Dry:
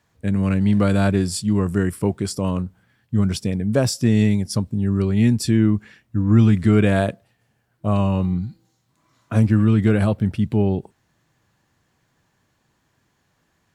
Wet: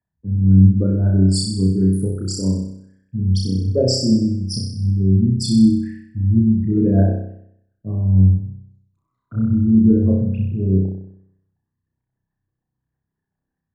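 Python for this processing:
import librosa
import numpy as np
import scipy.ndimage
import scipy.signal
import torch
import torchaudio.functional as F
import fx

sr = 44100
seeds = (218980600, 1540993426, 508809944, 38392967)

y = fx.envelope_sharpen(x, sr, power=3.0)
y = fx.room_flutter(y, sr, wall_m=5.4, rt60_s=0.86)
y = fx.band_widen(y, sr, depth_pct=40)
y = F.gain(torch.from_numpy(y), -1.5).numpy()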